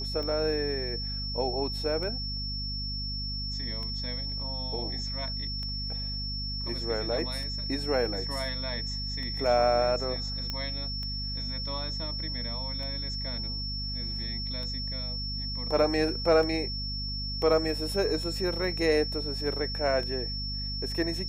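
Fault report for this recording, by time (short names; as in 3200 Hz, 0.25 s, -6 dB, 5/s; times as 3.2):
hum 50 Hz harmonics 5 -36 dBFS
tick 33 1/3 rpm -26 dBFS
tone 5400 Hz -34 dBFS
10.5 pop -18 dBFS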